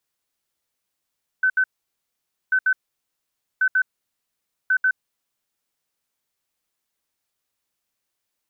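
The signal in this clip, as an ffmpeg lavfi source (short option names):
-f lavfi -i "aevalsrc='0.178*sin(2*PI*1520*t)*clip(min(mod(mod(t,1.09),0.14),0.07-mod(mod(t,1.09),0.14))/0.005,0,1)*lt(mod(t,1.09),0.28)':d=4.36:s=44100"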